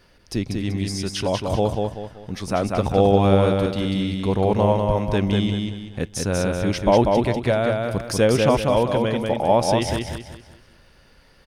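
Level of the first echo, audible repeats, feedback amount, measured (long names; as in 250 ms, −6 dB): −3.5 dB, 4, 36%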